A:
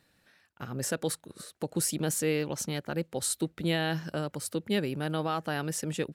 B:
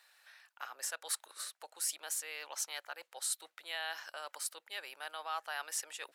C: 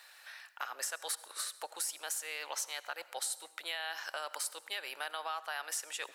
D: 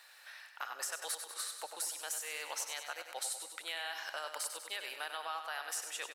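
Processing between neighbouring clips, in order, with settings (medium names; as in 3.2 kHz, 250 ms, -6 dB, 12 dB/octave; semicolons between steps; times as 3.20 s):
reverse; compression 6:1, threshold -37 dBFS, peak gain reduction 13 dB; reverse; high-pass 790 Hz 24 dB/octave; trim +4.5 dB
compression, threshold -44 dBFS, peak gain reduction 13 dB; reverberation RT60 0.85 s, pre-delay 63 ms, DRR 16.5 dB; trim +9 dB
feedback delay 97 ms, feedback 58%, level -8 dB; trim -2 dB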